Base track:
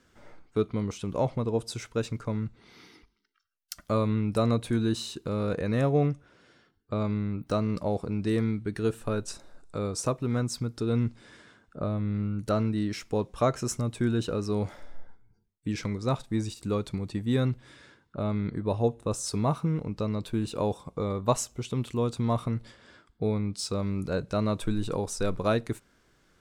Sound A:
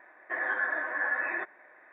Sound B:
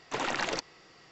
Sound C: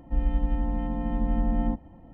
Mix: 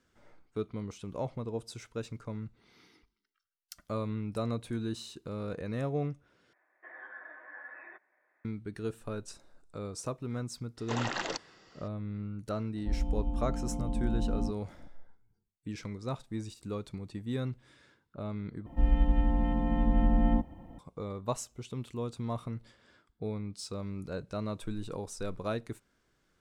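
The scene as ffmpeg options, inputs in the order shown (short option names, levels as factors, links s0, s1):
-filter_complex "[3:a]asplit=2[s0][s1];[0:a]volume=0.376[s2];[2:a]bandreject=f=2300:w=8.2[s3];[s0]asuperstop=centerf=1700:order=4:qfactor=0.84[s4];[s1]highshelf=f=2800:g=8.5[s5];[s2]asplit=3[s6][s7][s8];[s6]atrim=end=6.534[s9];[1:a]atrim=end=1.92,asetpts=PTS-STARTPTS,volume=0.133[s10];[s7]atrim=start=8.446:end=18.664[s11];[s5]atrim=end=2.13[s12];[s8]atrim=start=20.786[s13];[s3]atrim=end=1.11,asetpts=PTS-STARTPTS,volume=0.708,afade=t=in:d=0.004:c=hsin,afade=t=out:st=1.106:d=0.004:c=hsin,adelay=10770[s14];[s4]atrim=end=2.13,asetpts=PTS-STARTPTS,volume=0.501,afade=t=in:d=0.004:c=hsin,afade=t=out:st=2.126:d=0.004:c=hsin,adelay=12750[s15];[s9][s10]acrossfade=d=0.004:c1=hsin:c2=hsin[s16];[s16][s11]acrossfade=d=0.004:c1=hsin:c2=hsin[s17];[s17][s12]acrossfade=d=0.004:c1=hsin:c2=hsin[s18];[s18][s13]acrossfade=d=0.004:c1=hsin:c2=hsin[s19];[s19][s14][s15]amix=inputs=3:normalize=0"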